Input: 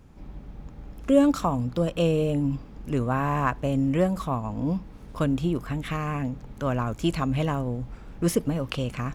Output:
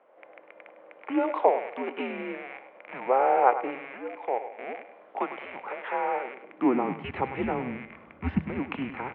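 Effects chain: rattle on loud lows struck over -35 dBFS, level -29 dBFS; bass shelf 380 Hz +7 dB; mistuned SSB -260 Hz 240–3600 Hz; 3.93–4.60 s: level held to a coarse grid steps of 15 dB; three-band isolator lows -20 dB, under 180 Hz, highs -22 dB, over 2.6 kHz; feedback comb 160 Hz, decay 0.97 s, harmonics odd, mix 60%; on a send: feedback delay 101 ms, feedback 33%, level -12 dB; on the sum: high-pass sweep 550 Hz -> 70 Hz, 6.25–7.44 s; trim +8.5 dB

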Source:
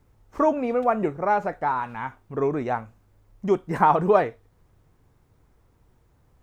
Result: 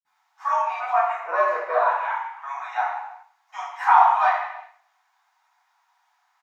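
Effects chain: steep high-pass 770 Hz 72 dB/octave; 1.10–1.74 s: ring modulator 240 Hz; feedback delay 120 ms, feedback 35%, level -20 dB; wow and flutter 16 cents; reverberation, pre-delay 46 ms

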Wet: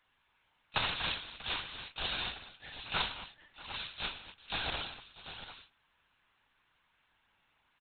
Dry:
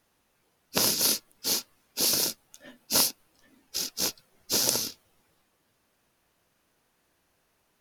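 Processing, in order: high-pass 960 Hz 12 dB/octave; multi-tap echo 54/104/161/234/640/743 ms -10/-14/-17/-14.5/-18/-11 dB; LPC vocoder at 8 kHz pitch kept; trim +1.5 dB

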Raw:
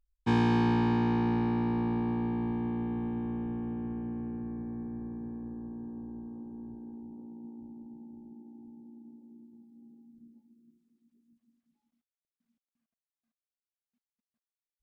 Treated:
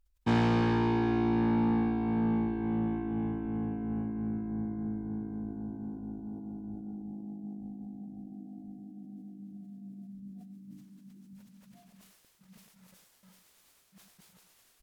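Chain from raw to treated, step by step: pitch bend over the whole clip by -4 st starting unshifted; reverse; upward compressor, threshold -44 dBFS; reverse; saturation -24 dBFS, distortion -15 dB; on a send: delay 102 ms -11.5 dB; on the sum: decay stretcher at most 49 dB/s; trim +3.5 dB

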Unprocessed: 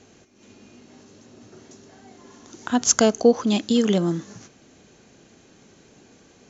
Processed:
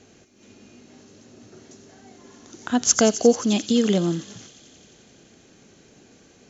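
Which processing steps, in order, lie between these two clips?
peaking EQ 990 Hz -3.5 dB 0.56 oct; on a send: feedback echo behind a high-pass 88 ms, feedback 83%, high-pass 3.5 kHz, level -11 dB

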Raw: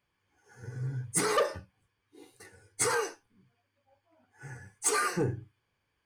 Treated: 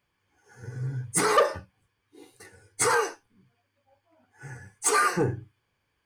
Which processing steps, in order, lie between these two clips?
dynamic bell 1 kHz, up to +5 dB, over -42 dBFS, Q 0.76; trim +3 dB

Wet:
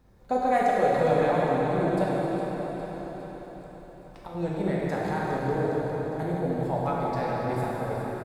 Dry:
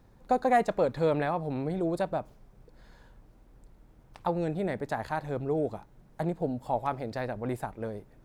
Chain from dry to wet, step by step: 2.07–4.35 s: compression, threshold -39 dBFS, peak gain reduction 14.5 dB; feedback delay 408 ms, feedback 59%, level -10 dB; plate-style reverb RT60 4.1 s, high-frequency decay 0.85×, DRR -6 dB; trim -3 dB

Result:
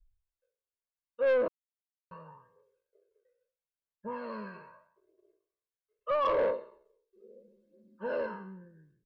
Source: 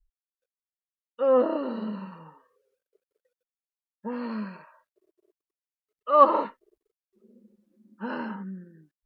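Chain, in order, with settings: spectral sustain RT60 0.54 s; peak limiter -15.5 dBFS, peak gain reduction 11.5 dB; 6.27–8.26 s: ten-band graphic EQ 125 Hz -7 dB, 500 Hz +10 dB, 1 kHz -6 dB, 4 kHz +4 dB; phaser 0.77 Hz, delay 2.7 ms, feedback 38%; treble shelf 2.4 kHz -8.5 dB; 1.48–2.11 s: mute; comb 1.9 ms, depth 59%; saturation -18 dBFS, distortion -11 dB; trim -4.5 dB

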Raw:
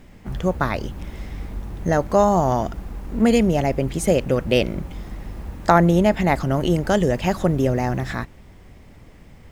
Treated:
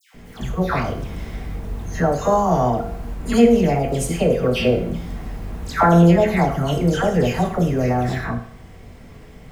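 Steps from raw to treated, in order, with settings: in parallel at -1 dB: compression, threshold -31 dBFS, peak gain reduction 20 dB; on the sum: phase dispersion lows, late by 146 ms, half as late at 1.6 kHz; reverberation RT60 0.60 s, pre-delay 3 ms, DRR 2.5 dB; trim -2.5 dB

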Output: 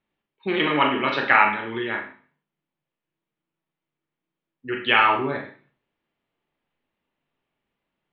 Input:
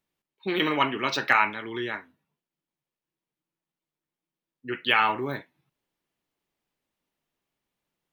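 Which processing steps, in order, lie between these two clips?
low-pass 3.3 kHz 24 dB/octave; Schroeder reverb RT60 0.43 s, combs from 27 ms, DRR 2.5 dB; trim +3 dB

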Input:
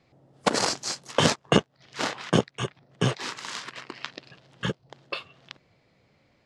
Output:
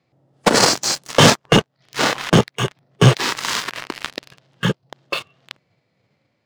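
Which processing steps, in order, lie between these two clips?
high-pass 85 Hz 24 dB/octave; waveshaping leveller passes 3; in parallel at -1 dB: level held to a coarse grid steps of 14 dB; on the sum: harmonic-percussive split harmonic +7 dB; trim -4.5 dB

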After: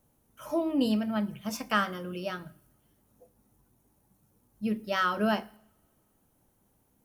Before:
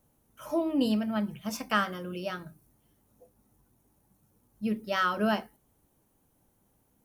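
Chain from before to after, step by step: two-slope reverb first 0.73 s, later 3.2 s, from -27 dB, DRR 20 dB

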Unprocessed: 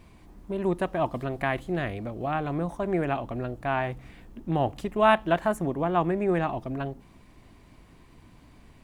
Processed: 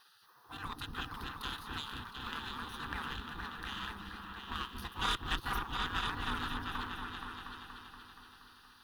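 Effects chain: spectral gate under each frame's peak -25 dB weak; static phaser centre 2.2 kHz, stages 6; in parallel at -6.5 dB: crossover distortion -57 dBFS; on the sum: peaking EQ 2.9 kHz -5.5 dB 0.5 oct; on a send: delay with an opening low-pass 237 ms, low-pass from 400 Hz, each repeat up 2 oct, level 0 dB; on the sum: valve stage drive 34 dB, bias 0.55; trim +10 dB

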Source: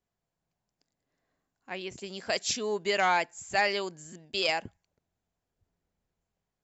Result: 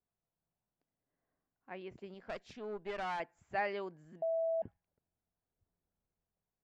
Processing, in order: low-pass 1.7 kHz 12 dB/octave; 2.14–3.20 s: valve stage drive 26 dB, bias 0.7; 4.22–4.62 s: bleep 656 Hz -23.5 dBFS; trim -7 dB

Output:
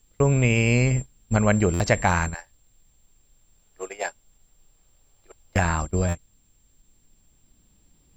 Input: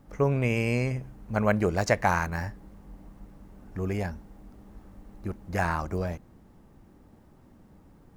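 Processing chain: recorder AGC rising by 6.1 dB/s; whistle 7.4 kHz -34 dBFS; 2.34–5.56 s: high-pass 470 Hz 24 dB/octave; gate -29 dBFS, range -29 dB; added noise brown -69 dBFS; tilt EQ -2 dB/octave; word length cut 12-bit, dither none; peaking EQ 3.4 kHz +12.5 dB 1.5 oct; buffer glitch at 1.73/6.08 s, samples 512, times 5; endings held to a fixed fall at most 520 dB/s

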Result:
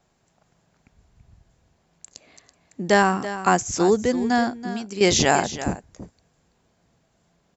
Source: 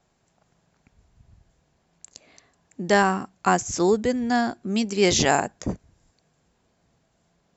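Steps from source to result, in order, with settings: 4.48–5.01 s: compression 10:1, threshold -30 dBFS, peak gain reduction 11.5 dB; delay 331 ms -13 dB; trim +1.5 dB

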